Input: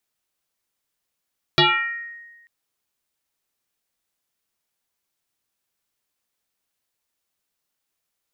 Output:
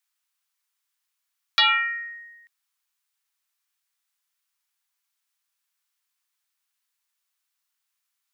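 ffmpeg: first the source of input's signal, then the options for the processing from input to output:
-f lavfi -i "aevalsrc='0.299*pow(10,-3*t/1.29)*sin(2*PI*1870*t+5.1*pow(10,-3*t/0.86)*sin(2*PI*0.27*1870*t))':duration=0.89:sample_rate=44100"
-af "highpass=frequency=960:width=0.5412,highpass=frequency=960:width=1.3066"

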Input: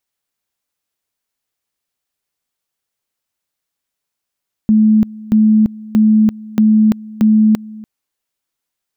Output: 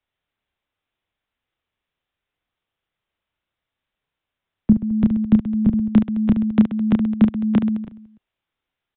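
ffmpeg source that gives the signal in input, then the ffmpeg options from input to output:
-f lavfi -i "aevalsrc='pow(10,(-6.5-21.5*gte(mod(t,0.63),0.34))/20)*sin(2*PI*216*t)':duration=3.15:sample_rate=44100"
-filter_complex "[0:a]acrossover=split=120|240|360[link_01][link_02][link_03][link_04];[link_01]acontrast=73[link_05];[link_05][link_02][link_03][link_04]amix=inputs=4:normalize=0,aecho=1:1:30|72|130.8|213.1|328.4:0.631|0.398|0.251|0.158|0.1,aresample=8000,aresample=44100"

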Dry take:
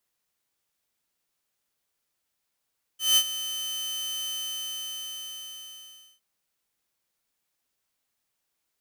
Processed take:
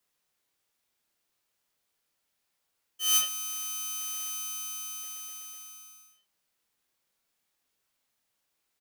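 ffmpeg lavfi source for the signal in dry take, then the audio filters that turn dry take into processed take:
-f lavfi -i "aevalsrc='0.211*(2*mod(3060*t,1)-1)':duration=3.21:sample_rate=44100,afade=type=in:duration=0.177,afade=type=out:start_time=0.177:duration=0.063:silence=0.2,afade=type=out:start_time=1.28:duration=1.93"
-filter_complex "[0:a]acrossover=split=150|6300[link_01][link_02][link_03];[link_02]aecho=1:1:27|73:0.631|0.355[link_04];[link_01][link_04][link_03]amix=inputs=3:normalize=0"

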